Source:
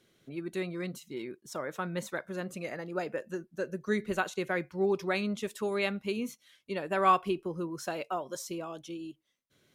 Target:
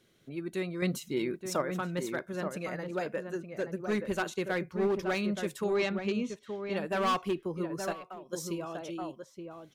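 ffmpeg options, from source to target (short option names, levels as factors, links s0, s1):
-filter_complex "[0:a]lowshelf=f=120:g=3.5,volume=17.8,asoftclip=hard,volume=0.0562,asettb=1/sr,asplit=3[s0][s1][s2];[s0]atrim=end=0.824[s3];[s1]atrim=start=0.82:end=1.62,asetpts=PTS-STARTPTS,afade=t=in:d=0.004:c=qsin,afade=t=out:st=0.796:d=0.004:c=qsin,acontrast=78[s4];[s2]atrim=start=1.616[s5];[s3][s4]acrossfade=d=0.004:c1=hsin:c2=qsin[s6];[s6][s5]acrossfade=d=0.004:c1=qsin:c2=hsin,asettb=1/sr,asplit=3[s7][s8][s9];[s7]atrim=end=5.644[s10];[s8]atrim=start=5.64:end=6.73,asetpts=PTS-STARTPTS,afade=t=in:d=0.004:c=qsin,afade=t=out:st=1.086:d=0.004:c=qsin,lowpass=f=7100:w=0.5412,lowpass=f=7100:w=1.3066[s11];[s9]atrim=start=6.726[s12];[s10][s11]acrossfade=d=0.004:c1=hsin:c2=qsin[s13];[s13][s12]acrossfade=d=0.004:c1=qsin:c2=hsin,asplit=2[s14][s15];[s15]adelay=874.6,volume=0.501,highshelf=f=4000:g=-19.7[s16];[s14][s16]amix=inputs=2:normalize=0,asettb=1/sr,asplit=3[s17][s18][s19];[s17]atrim=end=7.924[s20];[s18]atrim=start=7.92:end=8.33,asetpts=PTS-STARTPTS,afade=t=in:d=0.004:c=qsin,afade=t=out:st=0.406:d=0.004:c=qsin,acompressor=threshold=0.00891:ratio=12[s21];[s19]atrim=start=8.326[s22];[s20][s21]acrossfade=d=0.004:c1=hsin:c2=qsin[s23];[s23][s22]acrossfade=d=0.004:c1=qsin:c2=hsin"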